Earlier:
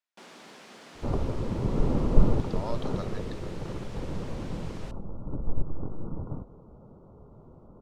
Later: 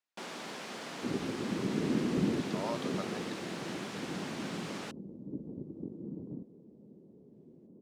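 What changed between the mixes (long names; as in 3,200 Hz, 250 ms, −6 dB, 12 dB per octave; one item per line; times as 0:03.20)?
first sound +7.5 dB
second sound: add flat-topped band-pass 270 Hz, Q 1.2
reverb: off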